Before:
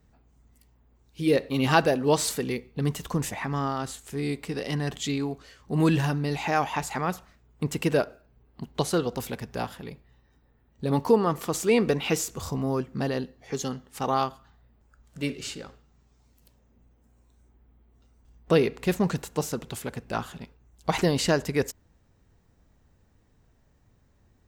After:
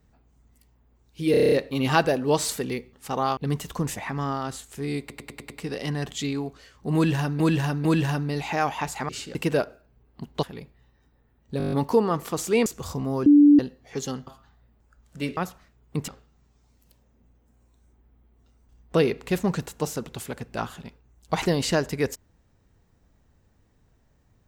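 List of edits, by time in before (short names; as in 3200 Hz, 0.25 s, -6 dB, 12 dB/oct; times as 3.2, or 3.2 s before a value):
1.31 stutter 0.03 s, 8 plays
4.35 stutter 0.10 s, 6 plays
5.8–6.25 loop, 3 plays
7.04–7.75 swap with 15.38–15.64
8.83–9.73 cut
10.88 stutter 0.02 s, 8 plays
11.82–12.23 cut
12.83–13.16 bleep 291 Hz -10 dBFS
13.84–14.28 move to 2.72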